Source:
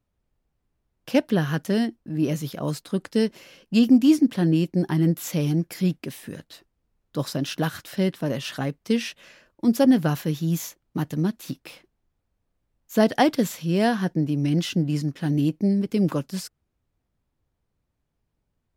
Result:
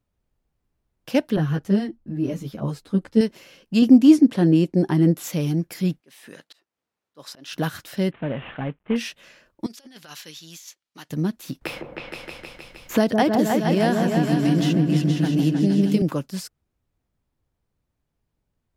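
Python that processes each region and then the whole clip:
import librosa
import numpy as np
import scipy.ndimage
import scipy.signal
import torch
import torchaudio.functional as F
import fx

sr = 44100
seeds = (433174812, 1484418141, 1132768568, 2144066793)

y = fx.chain(x, sr, fx.tilt_eq(slope=-2.0),
    fx.ensemble(), at=(1.36, 3.21))
y = fx.chain(y, sr, fx.lowpass(hz=12000.0, slope=24),
    fx.peak_eq(hz=440.0, db=5.5, octaves=2.3), at=(3.82, 5.24))
y = fx.chain(y, sr, fx.weighting(curve='A'),
    fx.auto_swell(attack_ms=253.0), at=(6.0, 7.53))
y = fx.chain(y, sr, fx.cvsd(bps=16000),
    fx.peak_eq(hz=350.0, db=-3.0, octaves=0.42), at=(8.11, 8.96))
y = fx.chain(y, sr, fx.bandpass_q(hz=4600.0, q=0.85),
    fx.over_compress(threshold_db=-41.0, ratio=-0.5), at=(9.66, 11.1))
y = fx.chain(y, sr, fx.echo_opening(ms=156, hz=750, octaves=2, feedback_pct=70, wet_db=-3),
    fx.band_squash(depth_pct=70), at=(11.61, 16.02))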